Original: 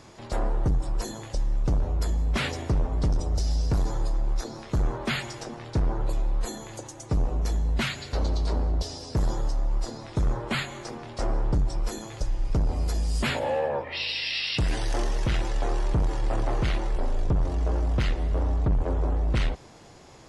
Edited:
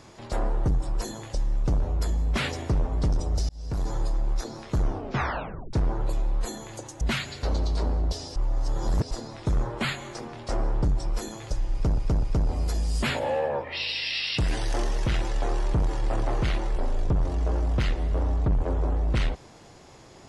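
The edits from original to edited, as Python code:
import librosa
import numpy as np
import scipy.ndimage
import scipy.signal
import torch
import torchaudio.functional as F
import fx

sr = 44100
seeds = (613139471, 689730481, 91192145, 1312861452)

y = fx.edit(x, sr, fx.fade_in_span(start_s=3.49, length_s=0.46),
    fx.tape_stop(start_s=4.78, length_s=0.95),
    fx.cut(start_s=7.01, length_s=0.7),
    fx.reverse_span(start_s=9.06, length_s=0.75),
    fx.repeat(start_s=12.43, length_s=0.25, count=3), tone=tone)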